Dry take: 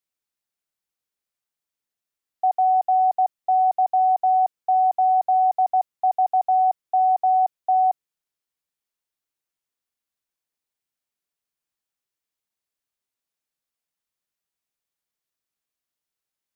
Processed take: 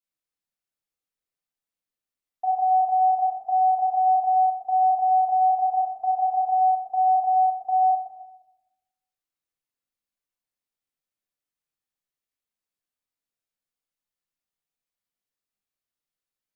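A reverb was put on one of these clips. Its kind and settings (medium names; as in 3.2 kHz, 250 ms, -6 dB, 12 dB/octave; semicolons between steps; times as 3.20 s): simulated room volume 370 m³, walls mixed, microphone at 2 m; trim -9.5 dB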